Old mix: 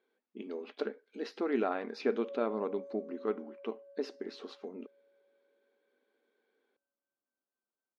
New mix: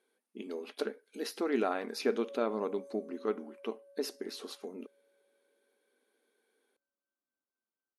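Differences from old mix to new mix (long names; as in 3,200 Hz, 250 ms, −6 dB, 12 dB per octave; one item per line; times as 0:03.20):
background: add parametric band 630 Hz −4 dB 1.5 octaves
master: remove high-frequency loss of the air 190 metres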